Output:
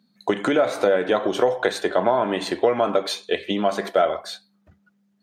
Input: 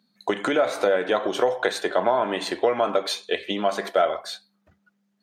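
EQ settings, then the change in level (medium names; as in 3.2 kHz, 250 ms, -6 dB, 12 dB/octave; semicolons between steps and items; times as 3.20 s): bass shelf 310 Hz +8 dB; 0.0 dB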